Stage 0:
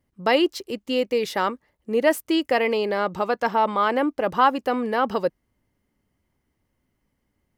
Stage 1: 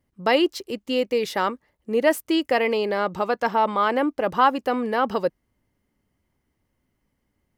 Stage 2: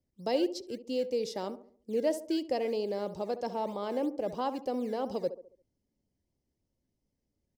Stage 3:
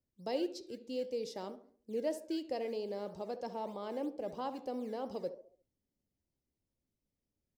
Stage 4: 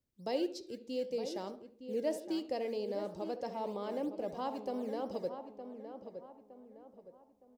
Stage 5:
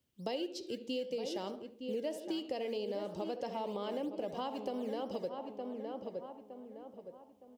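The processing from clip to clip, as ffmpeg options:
ffmpeg -i in.wav -af anull out.wav
ffmpeg -i in.wav -filter_complex "[0:a]firequalizer=gain_entry='entry(580,0);entry(1300,-17);entry(5100,4);entry(14000,-12)':delay=0.05:min_phase=1,acrossover=split=210[link_01][link_02];[link_01]acrusher=samples=16:mix=1:aa=0.000001:lfo=1:lforange=16:lforate=3.1[link_03];[link_02]asplit=2[link_04][link_05];[link_05]adelay=69,lowpass=frequency=1000:poles=1,volume=-10dB,asplit=2[link_06][link_07];[link_07]adelay=69,lowpass=frequency=1000:poles=1,volume=0.48,asplit=2[link_08][link_09];[link_09]adelay=69,lowpass=frequency=1000:poles=1,volume=0.48,asplit=2[link_10][link_11];[link_11]adelay=69,lowpass=frequency=1000:poles=1,volume=0.48,asplit=2[link_12][link_13];[link_13]adelay=69,lowpass=frequency=1000:poles=1,volume=0.48[link_14];[link_04][link_06][link_08][link_10][link_12][link_14]amix=inputs=6:normalize=0[link_15];[link_03][link_15]amix=inputs=2:normalize=0,volume=-8.5dB" out.wav
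ffmpeg -i in.wav -af "flanger=delay=7.4:depth=9.4:regen=-85:speed=0.54:shape=triangular,volume=-2dB" out.wav
ffmpeg -i in.wav -filter_complex "[0:a]asplit=2[link_01][link_02];[link_02]adelay=914,lowpass=frequency=1900:poles=1,volume=-9dB,asplit=2[link_03][link_04];[link_04]adelay=914,lowpass=frequency=1900:poles=1,volume=0.4,asplit=2[link_05][link_06];[link_06]adelay=914,lowpass=frequency=1900:poles=1,volume=0.4,asplit=2[link_07][link_08];[link_08]adelay=914,lowpass=frequency=1900:poles=1,volume=0.4[link_09];[link_01][link_03][link_05][link_07][link_09]amix=inputs=5:normalize=0,volume=1dB" out.wav
ffmpeg -i in.wav -af "highpass=69,equalizer=frequency=3000:width=3.8:gain=9,acompressor=threshold=-40dB:ratio=6,volume=5.5dB" out.wav

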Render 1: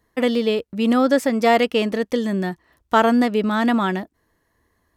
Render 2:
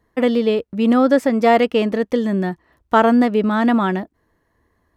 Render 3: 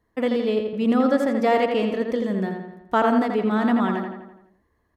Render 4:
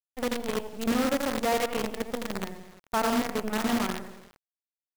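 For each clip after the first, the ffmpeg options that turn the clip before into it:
ffmpeg -i in.wav -af "highshelf=frequency=2800:gain=-9.5,volume=3dB" out.wav
ffmpeg -i in.wav -filter_complex "[0:a]asplit=2[link_01][link_02];[link_02]adelay=84,lowpass=frequency=4100:poles=1,volume=-4.5dB,asplit=2[link_03][link_04];[link_04]adelay=84,lowpass=frequency=4100:poles=1,volume=0.55,asplit=2[link_05][link_06];[link_06]adelay=84,lowpass=frequency=4100:poles=1,volume=0.55,asplit=2[link_07][link_08];[link_08]adelay=84,lowpass=frequency=4100:poles=1,volume=0.55,asplit=2[link_09][link_10];[link_10]adelay=84,lowpass=frequency=4100:poles=1,volume=0.55,asplit=2[link_11][link_12];[link_12]adelay=84,lowpass=frequency=4100:poles=1,volume=0.55,asplit=2[link_13][link_14];[link_14]adelay=84,lowpass=frequency=4100:poles=1,volume=0.55[link_15];[link_01][link_03][link_05][link_07][link_09][link_11][link_13][link_15]amix=inputs=8:normalize=0,volume=-6.5dB" out.wav
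ffmpeg -i in.wav -af "acrusher=bits=4:dc=4:mix=0:aa=0.000001,volume=-8dB" out.wav

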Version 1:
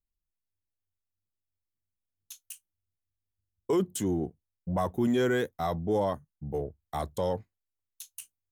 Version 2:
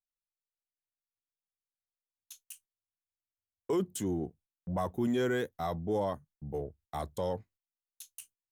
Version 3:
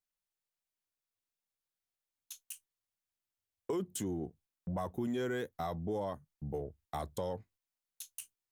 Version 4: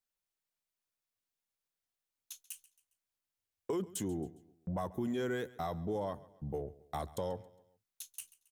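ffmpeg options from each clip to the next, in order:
ffmpeg -i in.wav -af "agate=range=-17dB:threshold=-56dB:ratio=16:detection=peak,volume=-4dB" out.wav
ffmpeg -i in.wav -af "acompressor=threshold=-38dB:ratio=2.5,volume=2dB" out.wav
ffmpeg -i in.wav -af "aecho=1:1:136|272|408:0.1|0.042|0.0176" out.wav

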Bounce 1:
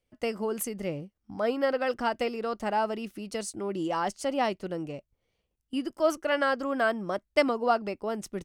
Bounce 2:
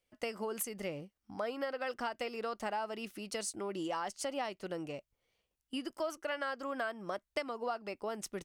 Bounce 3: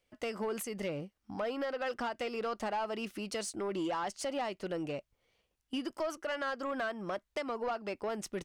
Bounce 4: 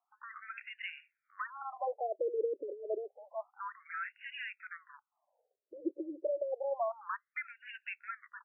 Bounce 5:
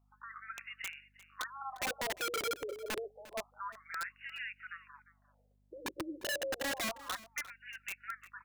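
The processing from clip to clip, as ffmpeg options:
ffmpeg -i in.wav -af "lowshelf=frequency=440:gain=-10,acompressor=threshold=-35dB:ratio=6,volume=1dB" out.wav
ffmpeg -i in.wav -filter_complex "[0:a]asplit=2[link_01][link_02];[link_02]alimiter=level_in=6.5dB:limit=-24dB:level=0:latency=1:release=121,volume=-6.5dB,volume=-1dB[link_03];[link_01][link_03]amix=inputs=2:normalize=0,asoftclip=type=tanh:threshold=-28dB,highshelf=frequency=7600:gain=-8" out.wav
ffmpeg -i in.wav -af "afftfilt=real='re*between(b*sr/1024,400*pow(2100/400,0.5+0.5*sin(2*PI*0.29*pts/sr))/1.41,400*pow(2100/400,0.5+0.5*sin(2*PI*0.29*pts/sr))*1.41)':imag='im*between(b*sr/1024,400*pow(2100/400,0.5+0.5*sin(2*PI*0.29*pts/sr))/1.41,400*pow(2100/400,0.5+0.5*sin(2*PI*0.29*pts/sr))*1.41)':win_size=1024:overlap=0.75,volume=5dB" out.wav
ffmpeg -i in.wav -af "aeval=exprs='(mod(35.5*val(0)+1,2)-1)/35.5':channel_layout=same,aeval=exprs='val(0)+0.000316*(sin(2*PI*50*n/s)+sin(2*PI*2*50*n/s)/2+sin(2*PI*3*50*n/s)/3+sin(2*PI*4*50*n/s)/4+sin(2*PI*5*50*n/s)/5)':channel_layout=same,aecho=1:1:351:0.119" out.wav

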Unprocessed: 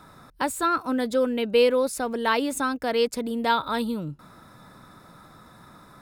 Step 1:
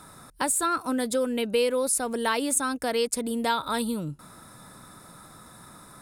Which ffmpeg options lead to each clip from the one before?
ffmpeg -i in.wav -af "equalizer=frequency=9400:width_type=o:width=0.97:gain=15,acompressor=threshold=-24dB:ratio=2" out.wav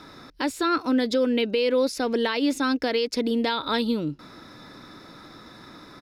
ffmpeg -i in.wav -af "firequalizer=gain_entry='entry(180,0);entry(290,10);entry(650,2);entry(1200,1);entry(2000,8);entry(5300,10);entry(8600,-17);entry(12000,-7)':delay=0.05:min_phase=1,alimiter=limit=-14dB:level=0:latency=1:release=94,highshelf=frequency=5200:gain=-5" out.wav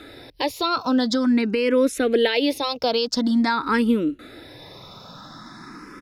ffmpeg -i in.wav -filter_complex "[0:a]asplit=2[link_01][link_02];[link_02]afreqshift=0.47[link_03];[link_01][link_03]amix=inputs=2:normalize=1,volume=7dB" out.wav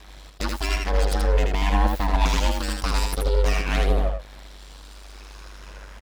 ffmpeg -i in.wav -af "aeval=exprs='abs(val(0))':channel_layout=same,aeval=exprs='val(0)*sin(2*PI*49*n/s)':channel_layout=same,aecho=1:1:80:0.668" out.wav

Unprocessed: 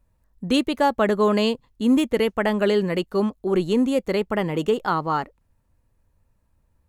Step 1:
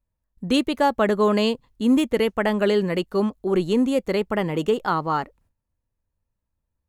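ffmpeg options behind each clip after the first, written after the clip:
ffmpeg -i in.wav -af "agate=range=-14dB:threshold=-57dB:ratio=16:detection=peak" out.wav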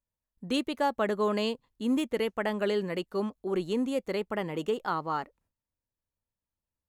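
ffmpeg -i in.wav -af "lowshelf=frequency=130:gain=-9,volume=-7.5dB" out.wav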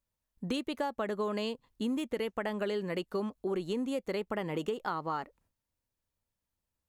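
ffmpeg -i in.wav -af "acompressor=threshold=-34dB:ratio=6,volume=3.5dB" out.wav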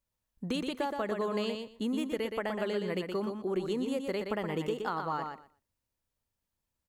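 ffmpeg -i in.wav -af "aecho=1:1:121|242|363:0.531|0.0849|0.0136" out.wav

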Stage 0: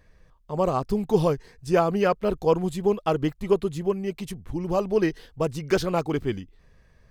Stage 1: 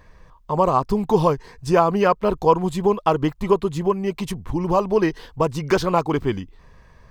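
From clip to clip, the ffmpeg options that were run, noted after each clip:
ffmpeg -i in.wav -filter_complex "[0:a]equalizer=frequency=1000:width=2.9:gain=10,asplit=2[link_01][link_02];[link_02]acompressor=threshold=-28dB:ratio=6,volume=2.5dB[link_03];[link_01][link_03]amix=inputs=2:normalize=0,equalizer=frequency=11000:width=1.4:gain=-4.5" out.wav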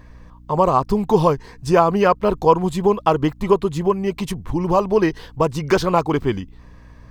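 ffmpeg -i in.wav -af "aeval=exprs='val(0)+0.00501*(sin(2*PI*60*n/s)+sin(2*PI*2*60*n/s)/2+sin(2*PI*3*60*n/s)/3+sin(2*PI*4*60*n/s)/4+sin(2*PI*5*60*n/s)/5)':channel_layout=same,volume=2dB" out.wav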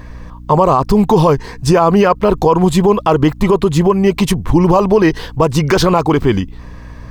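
ffmpeg -i in.wav -af "alimiter=level_in=12.5dB:limit=-1dB:release=50:level=0:latency=1,volume=-1dB" out.wav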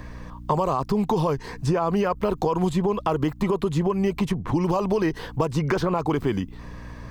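ffmpeg -i in.wav -filter_complex "[0:a]acrossover=split=110|2200|7500[link_01][link_02][link_03][link_04];[link_01]acompressor=threshold=-34dB:ratio=4[link_05];[link_02]acompressor=threshold=-17dB:ratio=4[link_06];[link_03]acompressor=threshold=-40dB:ratio=4[link_07];[link_04]acompressor=threshold=-51dB:ratio=4[link_08];[link_05][link_06][link_07][link_08]amix=inputs=4:normalize=0,volume=-4dB" out.wav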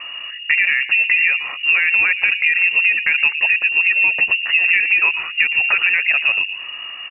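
ffmpeg -i in.wav -filter_complex "[0:a]acrossover=split=890[link_01][link_02];[link_01]aecho=1:1:114|228|342|456|570:0.316|0.142|0.064|0.0288|0.013[link_03];[link_02]asoftclip=type=hard:threshold=-24dB[link_04];[link_03][link_04]amix=inputs=2:normalize=0,lowpass=frequency=2500:width_type=q:width=0.5098,lowpass=frequency=2500:width_type=q:width=0.6013,lowpass=frequency=2500:width_type=q:width=0.9,lowpass=frequency=2500:width_type=q:width=2.563,afreqshift=-2900,volume=6.5dB" out.wav

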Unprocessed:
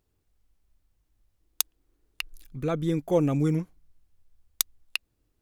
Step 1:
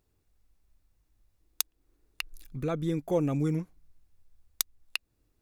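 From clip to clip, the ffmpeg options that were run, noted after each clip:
ffmpeg -i in.wav -filter_complex "[0:a]bandreject=frequency=3100:width=18,asplit=2[link_01][link_02];[link_02]acompressor=threshold=-34dB:ratio=6,volume=1.5dB[link_03];[link_01][link_03]amix=inputs=2:normalize=0,volume=-6dB" out.wav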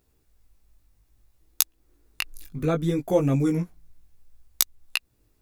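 ffmpeg -i in.wav -af "highshelf=frequency=9000:gain=4.5,flanger=delay=15:depth=5:speed=0.62,volume=9dB" out.wav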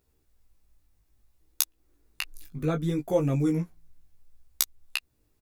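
ffmpeg -i in.wav -filter_complex "[0:a]asplit=2[link_01][link_02];[link_02]adelay=13,volume=-10dB[link_03];[link_01][link_03]amix=inputs=2:normalize=0,volume=-4dB" out.wav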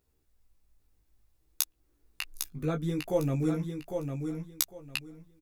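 ffmpeg -i in.wav -af "aecho=1:1:803|1606|2409:0.501|0.105|0.0221,volume=-3.5dB" out.wav

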